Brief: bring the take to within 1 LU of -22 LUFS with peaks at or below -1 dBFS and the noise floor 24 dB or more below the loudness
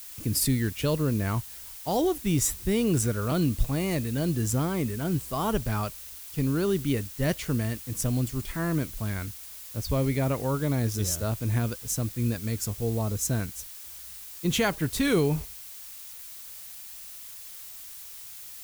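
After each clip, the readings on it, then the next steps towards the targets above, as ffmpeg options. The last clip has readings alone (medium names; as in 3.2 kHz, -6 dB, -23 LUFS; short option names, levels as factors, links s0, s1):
noise floor -43 dBFS; noise floor target -52 dBFS; loudness -28.0 LUFS; peak level -12.5 dBFS; loudness target -22.0 LUFS
-> -af "afftdn=nr=9:nf=-43"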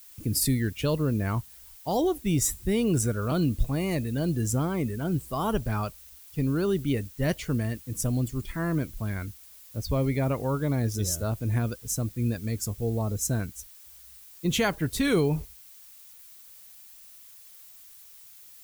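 noise floor -50 dBFS; noise floor target -52 dBFS
-> -af "afftdn=nr=6:nf=-50"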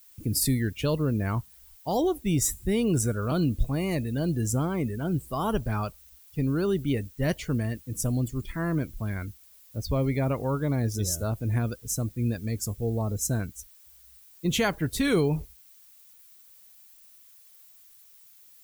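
noise floor -55 dBFS; loudness -28.0 LUFS; peak level -12.5 dBFS; loudness target -22.0 LUFS
-> -af "volume=2"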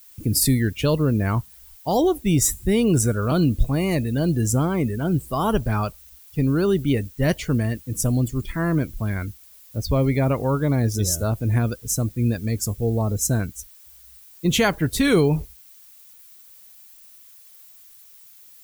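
loudness -22.0 LUFS; peak level -6.5 dBFS; noise floor -49 dBFS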